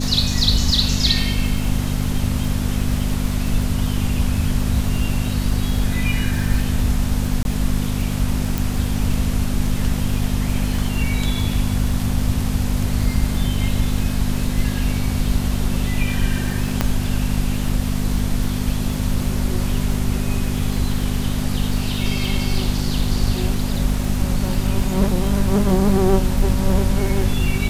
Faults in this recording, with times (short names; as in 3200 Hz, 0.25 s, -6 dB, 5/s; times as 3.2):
crackle 41/s -25 dBFS
hum 50 Hz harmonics 5 -23 dBFS
7.43–7.45 gap 21 ms
8.58 pop
16.81 pop -3 dBFS